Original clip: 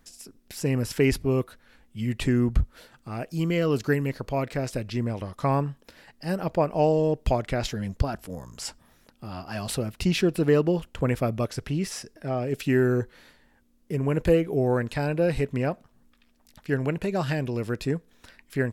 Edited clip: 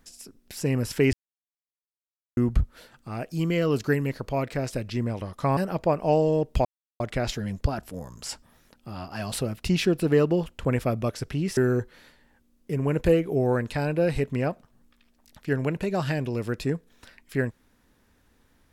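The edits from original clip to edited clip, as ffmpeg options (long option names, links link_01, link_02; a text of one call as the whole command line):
ffmpeg -i in.wav -filter_complex "[0:a]asplit=6[link_01][link_02][link_03][link_04][link_05][link_06];[link_01]atrim=end=1.13,asetpts=PTS-STARTPTS,afade=type=out:start_time=1.126:duration=0.004:curve=hsin[link_07];[link_02]atrim=start=1.13:end=2.37,asetpts=PTS-STARTPTS,volume=0[link_08];[link_03]atrim=start=2.37:end=5.572,asetpts=PTS-STARTPTS,afade=type=in:duration=0.004:curve=hsin[link_09];[link_04]atrim=start=6.278:end=7.36,asetpts=PTS-STARTPTS,afade=type=out:start_time=1.078:duration=0.004:curve=hsin,apad=pad_dur=0.35[link_10];[link_05]atrim=start=7.36:end=11.932,asetpts=PTS-STARTPTS,afade=type=in:duration=0.004:curve=hsin[link_11];[link_06]atrim=start=12.778[link_12];[link_07][link_08][link_09]concat=n=3:v=0:a=1[link_13];[link_10][link_11]concat=n=2:v=0:a=1[link_14];[link_13][link_14]acrossfade=duration=0.004:curve1=hsin:curve2=hsin[link_15];[link_15][link_12]acrossfade=duration=0.004:curve1=hsin:curve2=hsin" out.wav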